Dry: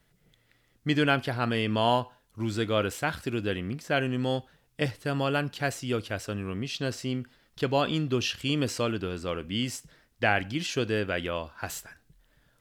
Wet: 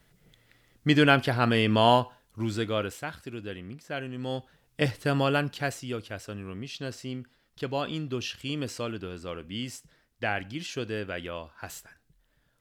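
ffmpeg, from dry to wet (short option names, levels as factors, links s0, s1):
-af "volume=6.31,afade=t=out:st=1.9:d=1.22:silence=0.251189,afade=t=in:st=4.15:d=0.88:silence=0.251189,afade=t=out:st=5.03:d=0.92:silence=0.354813"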